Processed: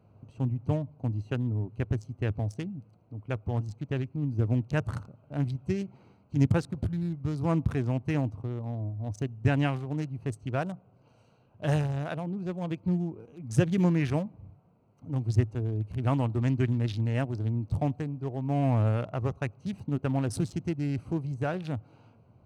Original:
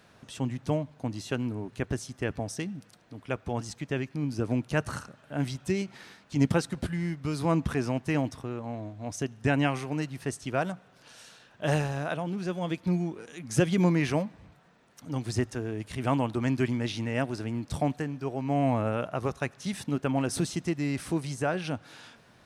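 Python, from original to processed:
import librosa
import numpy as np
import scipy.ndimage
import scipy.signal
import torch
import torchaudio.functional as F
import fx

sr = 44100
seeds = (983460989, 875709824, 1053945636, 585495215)

y = fx.wiener(x, sr, points=25)
y = fx.peak_eq(y, sr, hz=100.0, db=13.0, octaves=0.85)
y = F.gain(torch.from_numpy(y), -3.0).numpy()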